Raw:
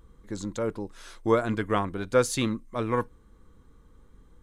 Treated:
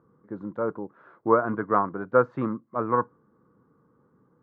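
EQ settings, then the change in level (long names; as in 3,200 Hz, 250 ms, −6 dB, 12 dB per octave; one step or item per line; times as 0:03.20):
Chebyshev band-pass filter 130–1,400 Hz, order 3
dynamic equaliser 1,100 Hz, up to +7 dB, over −41 dBFS, Q 1
0.0 dB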